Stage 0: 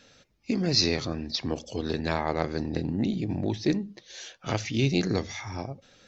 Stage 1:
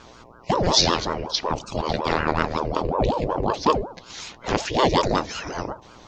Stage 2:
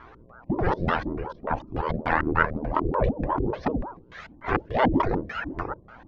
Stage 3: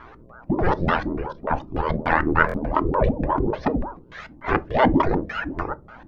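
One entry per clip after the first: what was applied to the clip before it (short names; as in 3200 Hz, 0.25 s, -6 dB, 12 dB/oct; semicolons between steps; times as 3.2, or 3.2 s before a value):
buzz 120 Hz, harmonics 7, -54 dBFS 0 dB/oct; HPF 92 Hz; ring modulator with a swept carrier 480 Hz, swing 65%, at 5.4 Hz; gain +8.5 dB
LFO low-pass square 3.4 Hz 300–1700 Hz; cascading flanger rising 1.8 Hz; gain +1.5 dB
on a send at -14.5 dB: reverb RT60 0.25 s, pre-delay 3 ms; on the sum: stuck buffer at 2.47, samples 1024, times 2; gain +3.5 dB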